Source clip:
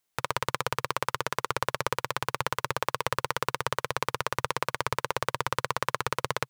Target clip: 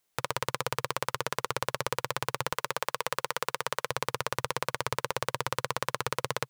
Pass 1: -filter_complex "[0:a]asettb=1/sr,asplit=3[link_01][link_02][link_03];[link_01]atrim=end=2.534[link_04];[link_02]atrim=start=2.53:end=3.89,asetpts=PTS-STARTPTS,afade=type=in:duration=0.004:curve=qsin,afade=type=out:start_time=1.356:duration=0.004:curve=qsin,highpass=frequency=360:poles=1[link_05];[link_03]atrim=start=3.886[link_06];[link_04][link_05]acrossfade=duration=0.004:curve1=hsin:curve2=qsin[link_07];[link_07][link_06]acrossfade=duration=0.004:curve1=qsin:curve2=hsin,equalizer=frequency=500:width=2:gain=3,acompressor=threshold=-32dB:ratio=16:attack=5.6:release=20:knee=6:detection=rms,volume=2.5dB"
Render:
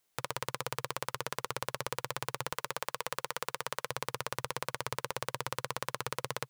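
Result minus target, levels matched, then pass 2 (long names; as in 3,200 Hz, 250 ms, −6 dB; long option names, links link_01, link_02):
downward compressor: peak gain reduction +6 dB
-filter_complex "[0:a]asettb=1/sr,asplit=3[link_01][link_02][link_03];[link_01]atrim=end=2.534[link_04];[link_02]atrim=start=2.53:end=3.89,asetpts=PTS-STARTPTS,afade=type=in:duration=0.004:curve=qsin,afade=type=out:start_time=1.356:duration=0.004:curve=qsin,highpass=frequency=360:poles=1[link_05];[link_03]atrim=start=3.886[link_06];[link_04][link_05]acrossfade=duration=0.004:curve1=hsin:curve2=qsin[link_07];[link_07][link_06]acrossfade=duration=0.004:curve1=qsin:curve2=hsin,equalizer=frequency=500:width=2:gain=3,acompressor=threshold=-25.5dB:ratio=16:attack=5.6:release=20:knee=6:detection=rms,volume=2.5dB"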